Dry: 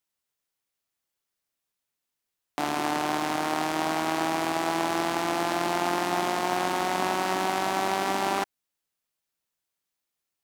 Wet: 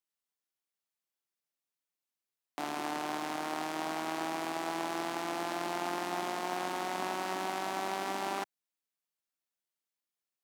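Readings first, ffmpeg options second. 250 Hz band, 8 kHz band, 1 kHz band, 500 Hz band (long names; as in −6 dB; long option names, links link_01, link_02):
−9.0 dB, −8.5 dB, −8.5 dB, −8.5 dB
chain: -af "highpass=160,volume=-8.5dB"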